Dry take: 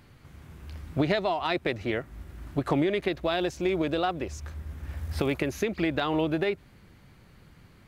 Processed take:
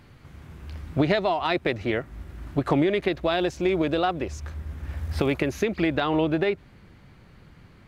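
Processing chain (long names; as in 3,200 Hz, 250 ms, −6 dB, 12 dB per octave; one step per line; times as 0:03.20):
high-shelf EQ 7,100 Hz −6.5 dB, from 0:05.97 −11.5 dB
level +3.5 dB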